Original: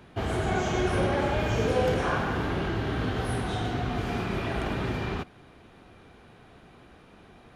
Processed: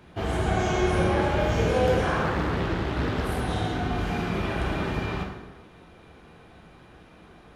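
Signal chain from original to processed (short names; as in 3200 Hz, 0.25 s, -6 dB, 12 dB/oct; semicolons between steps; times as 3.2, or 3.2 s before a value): plate-style reverb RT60 1.1 s, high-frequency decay 0.75×, pre-delay 0 ms, DRR 0 dB; 2.23–3.4 Doppler distortion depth 0.7 ms; gain -1 dB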